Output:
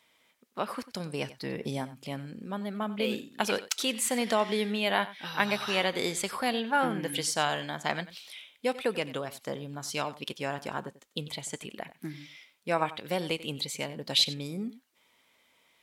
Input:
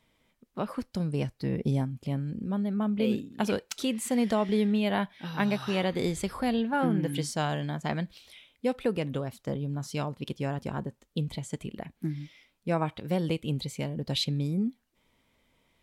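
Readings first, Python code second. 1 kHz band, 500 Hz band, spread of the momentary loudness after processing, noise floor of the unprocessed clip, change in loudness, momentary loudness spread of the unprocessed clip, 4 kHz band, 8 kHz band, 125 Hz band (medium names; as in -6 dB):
+3.0 dB, -0.5 dB, 12 LU, -74 dBFS, -0.5 dB, 9 LU, +6.5 dB, +6.5 dB, -9.5 dB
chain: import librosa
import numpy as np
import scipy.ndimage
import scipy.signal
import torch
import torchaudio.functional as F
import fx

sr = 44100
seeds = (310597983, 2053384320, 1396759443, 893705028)

p1 = fx.highpass(x, sr, hz=1000.0, slope=6)
p2 = p1 + fx.echo_single(p1, sr, ms=93, db=-16.5, dry=0)
y = p2 * 10.0 ** (6.5 / 20.0)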